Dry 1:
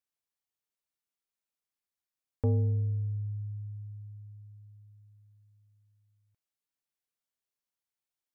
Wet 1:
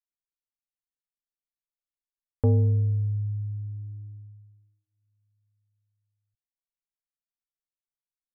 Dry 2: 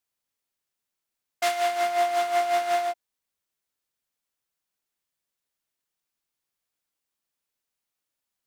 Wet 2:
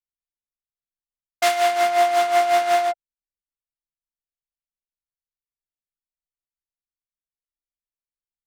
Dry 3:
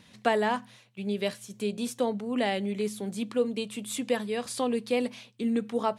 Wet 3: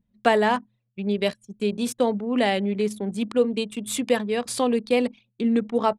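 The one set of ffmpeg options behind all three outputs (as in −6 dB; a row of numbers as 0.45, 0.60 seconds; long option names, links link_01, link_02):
-af "anlmdn=0.631,volume=6dB"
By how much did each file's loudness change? +6.5, +6.0, +6.0 LU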